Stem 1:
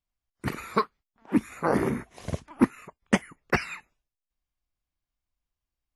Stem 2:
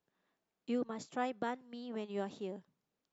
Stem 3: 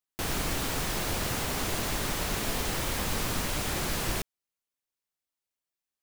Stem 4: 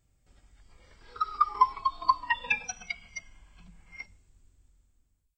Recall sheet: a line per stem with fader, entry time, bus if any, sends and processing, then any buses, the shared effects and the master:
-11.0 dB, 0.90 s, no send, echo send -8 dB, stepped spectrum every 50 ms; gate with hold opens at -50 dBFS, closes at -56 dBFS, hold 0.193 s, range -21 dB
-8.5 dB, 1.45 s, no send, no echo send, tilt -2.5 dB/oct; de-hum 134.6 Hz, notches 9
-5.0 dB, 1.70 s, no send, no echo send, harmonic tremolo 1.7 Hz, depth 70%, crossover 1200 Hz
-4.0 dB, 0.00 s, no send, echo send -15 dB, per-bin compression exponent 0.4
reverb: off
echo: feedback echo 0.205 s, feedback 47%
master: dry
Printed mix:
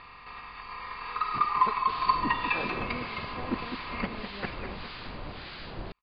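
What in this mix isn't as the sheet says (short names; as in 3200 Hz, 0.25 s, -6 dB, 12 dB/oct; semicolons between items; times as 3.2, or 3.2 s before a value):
stem 1: missing stepped spectrum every 50 ms; stem 2: entry 1.45 s -> 2.20 s; master: extra Chebyshev low-pass 4800 Hz, order 8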